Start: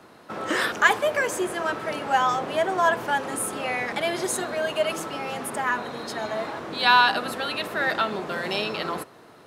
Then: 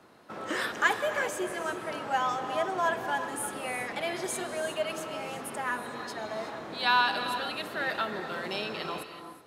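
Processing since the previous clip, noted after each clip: non-linear reverb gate 0.4 s rising, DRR 8 dB; gain -7 dB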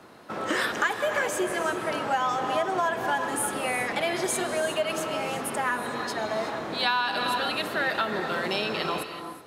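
compressor 6:1, threshold -29 dBFS, peak gain reduction 10.5 dB; gain +7 dB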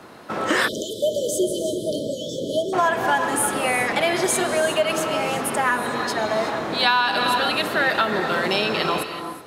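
spectral delete 0.68–2.73, 650–3000 Hz; gain +6.5 dB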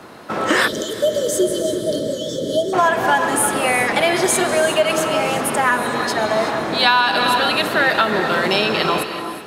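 multi-head echo 0.19 s, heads first and second, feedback 73%, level -23.5 dB; gain +4 dB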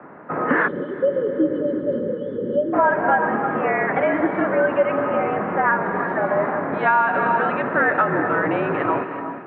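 mistuned SSB -52 Hz 200–2000 Hz; gain -1.5 dB

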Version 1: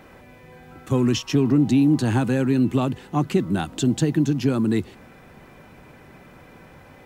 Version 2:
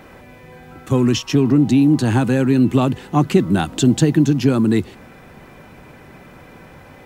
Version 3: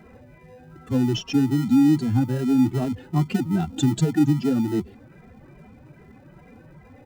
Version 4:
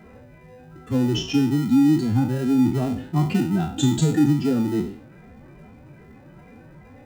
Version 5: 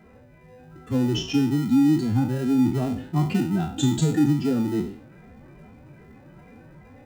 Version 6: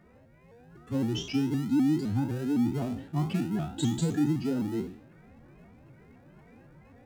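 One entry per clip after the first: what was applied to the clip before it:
vocal rider 2 s; gain +5 dB
spectral contrast raised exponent 1.7; in parallel at -11.5 dB: sample-rate reducer 1100 Hz, jitter 0%; on the sum: endless flanger 2.6 ms +2.5 Hz; gain -4 dB
spectral trails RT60 0.50 s
AGC gain up to 3.5 dB; gain -5 dB
shaped vibrato saw up 3.9 Hz, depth 160 cents; gain -6.5 dB

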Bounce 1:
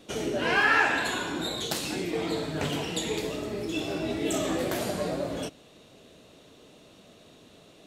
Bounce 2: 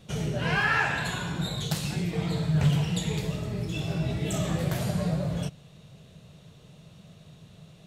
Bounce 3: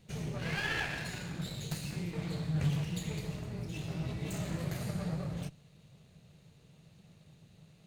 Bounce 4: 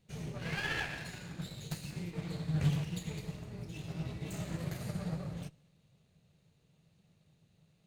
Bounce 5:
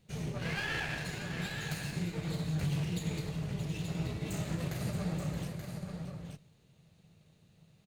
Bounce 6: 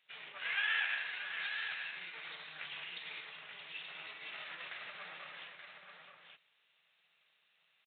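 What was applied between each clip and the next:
resonant low shelf 210 Hz +10 dB, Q 3; gain -2.5 dB
minimum comb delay 0.45 ms; gain -8 dB
on a send at -18.5 dB: reverb, pre-delay 3 ms; on the sum: upward expander 1.5:1, over -49 dBFS; gain +2 dB
limiter -30.5 dBFS, peak gain reduction 10.5 dB; tapped delay 0.624/0.879 s -11/-7 dB; gain +4 dB
Butterworth band-pass 2800 Hz, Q 0.65; downsampling 8000 Hz; gain +4 dB

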